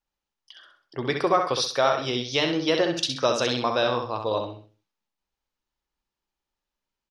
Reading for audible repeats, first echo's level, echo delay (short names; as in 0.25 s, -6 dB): 3, -6.0 dB, 65 ms